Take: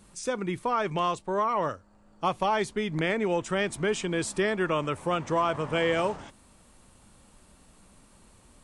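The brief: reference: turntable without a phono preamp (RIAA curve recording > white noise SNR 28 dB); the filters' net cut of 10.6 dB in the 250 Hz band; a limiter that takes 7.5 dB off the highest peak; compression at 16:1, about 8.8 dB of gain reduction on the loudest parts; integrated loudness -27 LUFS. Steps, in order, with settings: peaking EQ 250 Hz -7.5 dB; compression 16:1, threshold -31 dBFS; peak limiter -29 dBFS; RIAA curve recording; white noise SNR 28 dB; trim +9 dB

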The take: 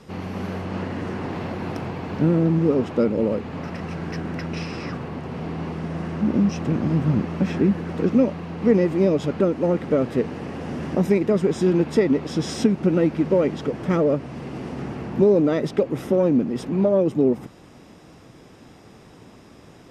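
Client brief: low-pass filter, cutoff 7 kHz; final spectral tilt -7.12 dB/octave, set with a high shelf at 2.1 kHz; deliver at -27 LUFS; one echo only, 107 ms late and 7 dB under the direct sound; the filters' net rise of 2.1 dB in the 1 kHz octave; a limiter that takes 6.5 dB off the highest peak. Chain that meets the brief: low-pass 7 kHz; peaking EQ 1 kHz +3.5 dB; treble shelf 2.1 kHz -3.5 dB; peak limiter -12 dBFS; delay 107 ms -7 dB; trim -4 dB

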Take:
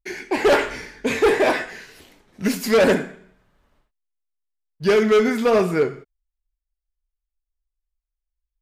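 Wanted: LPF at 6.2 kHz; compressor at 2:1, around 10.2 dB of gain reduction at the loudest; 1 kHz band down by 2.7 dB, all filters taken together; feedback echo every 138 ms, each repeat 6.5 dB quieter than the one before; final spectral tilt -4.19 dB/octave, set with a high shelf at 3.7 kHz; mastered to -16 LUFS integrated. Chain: low-pass 6.2 kHz; peaking EQ 1 kHz -3.5 dB; treble shelf 3.7 kHz -3 dB; compression 2:1, threshold -33 dBFS; feedback delay 138 ms, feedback 47%, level -6.5 dB; trim +13 dB

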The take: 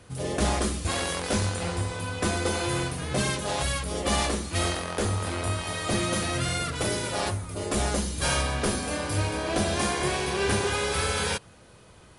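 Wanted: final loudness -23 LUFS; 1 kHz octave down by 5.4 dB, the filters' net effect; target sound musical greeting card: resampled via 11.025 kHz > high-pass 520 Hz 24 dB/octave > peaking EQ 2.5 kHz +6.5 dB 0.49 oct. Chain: peaking EQ 1 kHz -7.5 dB; resampled via 11.025 kHz; high-pass 520 Hz 24 dB/octave; peaking EQ 2.5 kHz +6.5 dB 0.49 oct; trim +7.5 dB

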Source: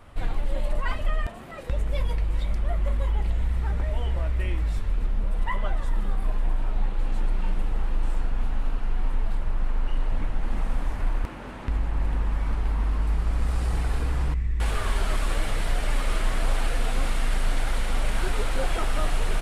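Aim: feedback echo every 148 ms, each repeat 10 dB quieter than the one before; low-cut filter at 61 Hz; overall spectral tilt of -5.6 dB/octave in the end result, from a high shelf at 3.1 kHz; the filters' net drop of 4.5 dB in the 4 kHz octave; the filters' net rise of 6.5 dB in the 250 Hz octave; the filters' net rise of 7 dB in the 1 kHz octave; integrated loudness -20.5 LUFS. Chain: high-pass 61 Hz; peaking EQ 250 Hz +8 dB; peaking EQ 1 kHz +9 dB; treble shelf 3.1 kHz -4 dB; peaking EQ 4 kHz -4 dB; feedback delay 148 ms, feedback 32%, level -10 dB; trim +9.5 dB

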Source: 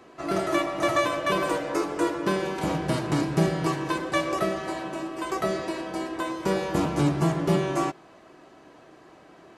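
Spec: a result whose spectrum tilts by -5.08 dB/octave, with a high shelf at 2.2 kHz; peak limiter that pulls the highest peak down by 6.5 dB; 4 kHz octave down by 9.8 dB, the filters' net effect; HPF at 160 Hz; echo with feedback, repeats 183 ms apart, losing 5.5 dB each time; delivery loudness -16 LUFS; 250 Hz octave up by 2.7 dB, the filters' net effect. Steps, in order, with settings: high-pass 160 Hz; peaking EQ 250 Hz +5.5 dB; treble shelf 2.2 kHz -8.5 dB; peaking EQ 4 kHz -5.5 dB; peak limiter -16 dBFS; feedback delay 183 ms, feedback 53%, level -5.5 dB; trim +10 dB

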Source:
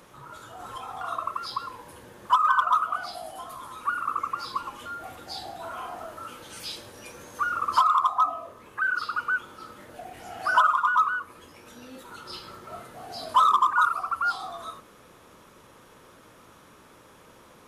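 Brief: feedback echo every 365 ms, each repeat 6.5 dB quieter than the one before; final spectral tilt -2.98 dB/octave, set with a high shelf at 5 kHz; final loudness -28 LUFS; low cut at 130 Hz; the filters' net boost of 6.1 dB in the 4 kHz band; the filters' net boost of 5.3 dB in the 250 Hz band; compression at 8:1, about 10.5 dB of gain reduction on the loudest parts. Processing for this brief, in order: high-pass 130 Hz; peaking EQ 250 Hz +7 dB; peaking EQ 4 kHz +5 dB; treble shelf 5 kHz +5.5 dB; compression 8:1, threshold -26 dBFS; feedback delay 365 ms, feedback 47%, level -6.5 dB; trim +3.5 dB

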